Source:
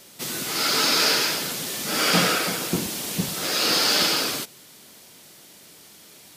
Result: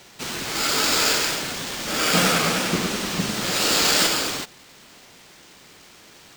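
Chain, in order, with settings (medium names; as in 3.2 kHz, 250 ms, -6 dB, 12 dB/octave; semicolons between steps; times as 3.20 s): sample-rate reducer 12 kHz, jitter 0%; 2.04–4.07 s: modulated delay 100 ms, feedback 76%, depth 206 cents, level -6 dB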